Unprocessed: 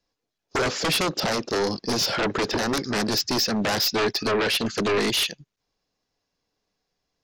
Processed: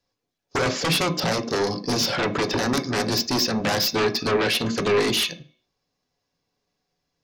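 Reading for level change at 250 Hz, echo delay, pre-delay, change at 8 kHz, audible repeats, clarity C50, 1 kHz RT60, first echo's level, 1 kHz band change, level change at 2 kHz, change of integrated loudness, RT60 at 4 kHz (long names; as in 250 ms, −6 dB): +1.5 dB, no echo audible, 3 ms, +0.5 dB, no echo audible, 15.0 dB, 0.45 s, no echo audible, +1.0 dB, +0.5 dB, +1.0 dB, 0.40 s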